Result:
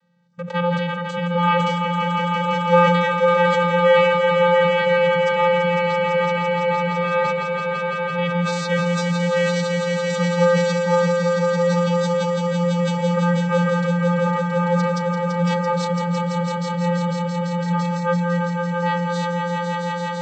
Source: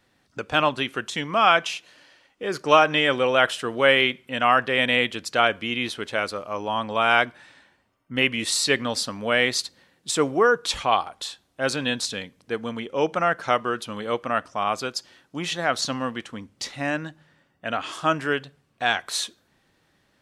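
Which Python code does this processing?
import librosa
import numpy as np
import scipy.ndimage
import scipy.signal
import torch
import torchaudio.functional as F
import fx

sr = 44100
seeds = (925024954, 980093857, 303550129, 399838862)

p1 = fx.vocoder(x, sr, bands=16, carrier='square', carrier_hz=174.0)
p2 = p1 + fx.echo_swell(p1, sr, ms=168, loudest=5, wet_db=-5.5, dry=0)
y = fx.sustainer(p2, sr, db_per_s=26.0)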